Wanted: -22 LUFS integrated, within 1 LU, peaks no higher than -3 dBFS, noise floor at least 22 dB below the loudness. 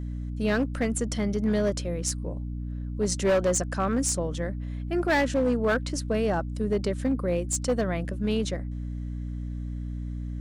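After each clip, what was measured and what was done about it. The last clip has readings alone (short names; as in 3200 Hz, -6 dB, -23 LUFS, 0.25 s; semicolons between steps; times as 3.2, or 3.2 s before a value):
clipped 1.3%; flat tops at -18.5 dBFS; hum 60 Hz; harmonics up to 300 Hz; hum level -31 dBFS; loudness -28.0 LUFS; peak -18.5 dBFS; loudness target -22.0 LUFS
-> clip repair -18.5 dBFS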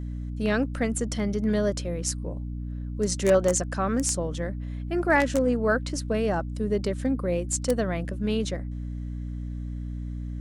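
clipped 0.0%; hum 60 Hz; harmonics up to 300 Hz; hum level -30 dBFS
-> notches 60/120/180/240/300 Hz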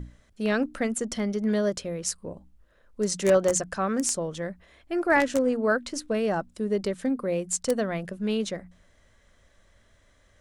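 hum none; loudness -27.0 LUFS; peak -9.0 dBFS; loudness target -22.0 LUFS
-> gain +5 dB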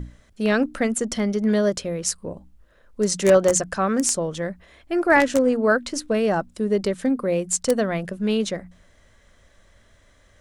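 loudness -22.0 LUFS; peak -4.0 dBFS; noise floor -57 dBFS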